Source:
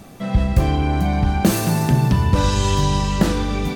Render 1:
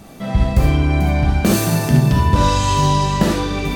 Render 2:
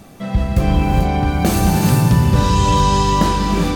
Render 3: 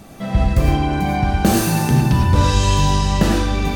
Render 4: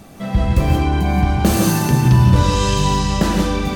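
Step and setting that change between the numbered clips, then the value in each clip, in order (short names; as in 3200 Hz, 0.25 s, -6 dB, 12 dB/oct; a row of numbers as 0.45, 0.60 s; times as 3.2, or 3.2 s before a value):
non-linear reverb, gate: 90, 440, 130, 200 ms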